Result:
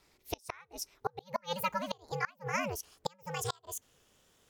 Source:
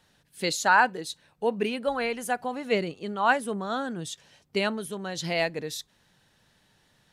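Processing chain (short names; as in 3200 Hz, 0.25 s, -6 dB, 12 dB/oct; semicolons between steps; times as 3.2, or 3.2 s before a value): speed glide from 129% -> 188%; ring modulator 180 Hz; flipped gate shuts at -17 dBFS, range -32 dB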